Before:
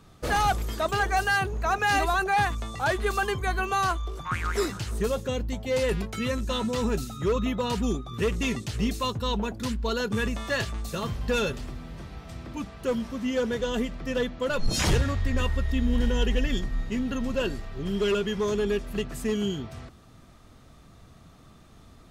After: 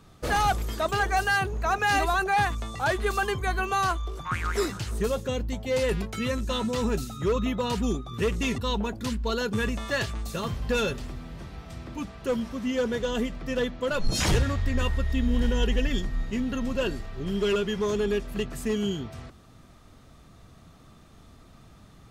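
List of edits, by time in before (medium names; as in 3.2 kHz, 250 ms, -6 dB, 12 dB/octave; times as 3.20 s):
8.58–9.17 s: delete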